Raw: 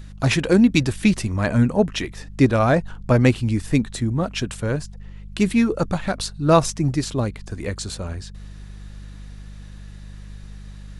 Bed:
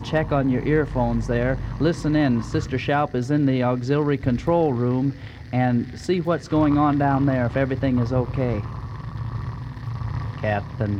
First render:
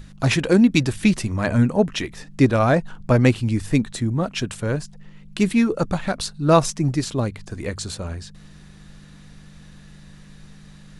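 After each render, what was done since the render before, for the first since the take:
hum removal 50 Hz, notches 2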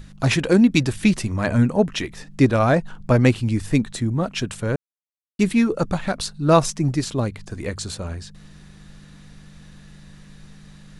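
0:04.76–0:05.39: silence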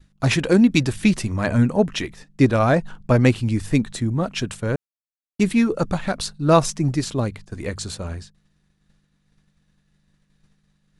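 downward expander −30 dBFS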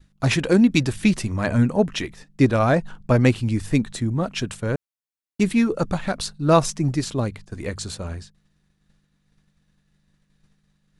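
level −1 dB

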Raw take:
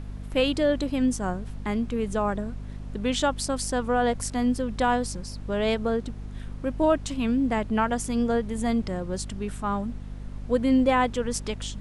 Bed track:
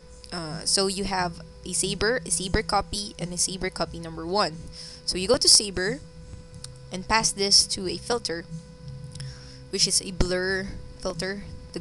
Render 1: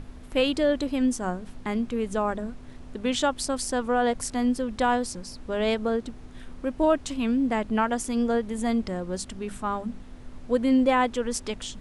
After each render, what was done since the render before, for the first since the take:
mains-hum notches 50/100/150/200 Hz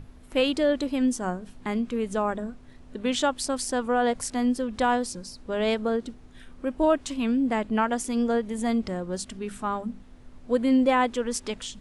noise reduction from a noise print 6 dB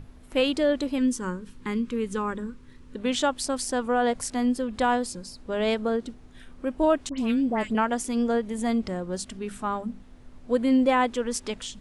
0:00.98–0:02.96: Butterworth band-reject 690 Hz, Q 2
0:04.44–0:05.40: notch filter 5,800 Hz
0:07.09–0:07.75: all-pass dispersion highs, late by 96 ms, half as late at 2,000 Hz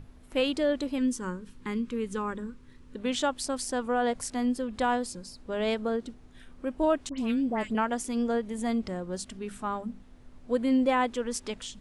level −3.5 dB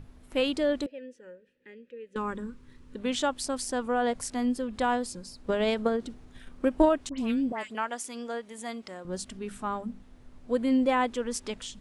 0:00.86–0:02.16: formant filter e
0:05.44–0:06.89: transient designer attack +9 dB, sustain +3 dB
0:07.52–0:09.05: high-pass filter 880 Hz 6 dB per octave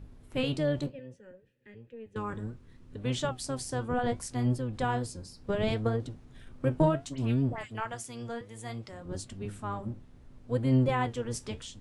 sub-octave generator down 1 octave, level +3 dB
flanger 0.66 Hz, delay 6.1 ms, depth 8.5 ms, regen −64%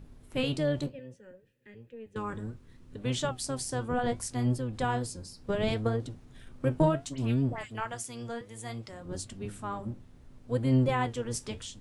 high-shelf EQ 5,100 Hz +4.5 dB
mains-hum notches 50/100 Hz

